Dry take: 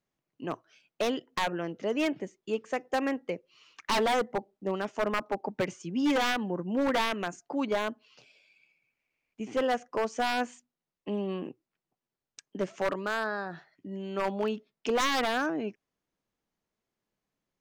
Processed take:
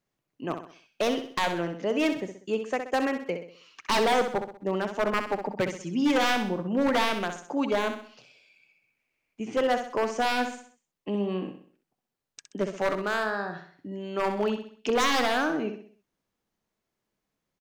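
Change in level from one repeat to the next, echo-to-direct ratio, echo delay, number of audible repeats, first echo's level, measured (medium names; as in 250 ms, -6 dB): -7.5 dB, -7.0 dB, 64 ms, 4, -8.0 dB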